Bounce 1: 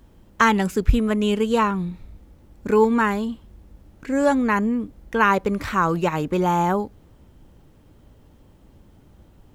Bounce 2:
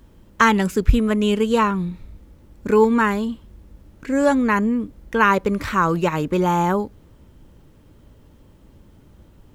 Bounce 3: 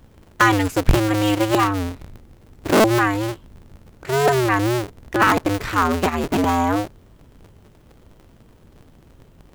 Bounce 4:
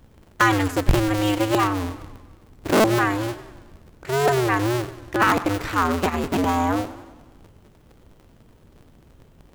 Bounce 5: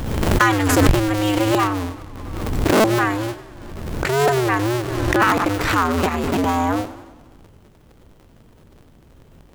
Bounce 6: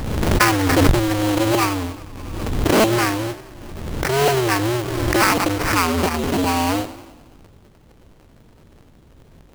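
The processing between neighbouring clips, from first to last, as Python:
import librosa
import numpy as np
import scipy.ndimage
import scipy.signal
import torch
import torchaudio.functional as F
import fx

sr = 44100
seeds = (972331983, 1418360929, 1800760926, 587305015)

y1 = fx.peak_eq(x, sr, hz=750.0, db=-6.0, octaves=0.23)
y1 = y1 * librosa.db_to_amplitude(2.0)
y2 = fx.cycle_switch(y1, sr, every=2, mode='inverted')
y3 = fx.echo_warbled(y2, sr, ms=97, feedback_pct=60, rate_hz=2.8, cents=167, wet_db=-15.5)
y3 = y3 * librosa.db_to_amplitude(-2.5)
y4 = fx.pre_swell(y3, sr, db_per_s=33.0)
y4 = y4 * librosa.db_to_amplitude(1.5)
y5 = fx.sample_hold(y4, sr, seeds[0], rate_hz=3600.0, jitter_pct=20)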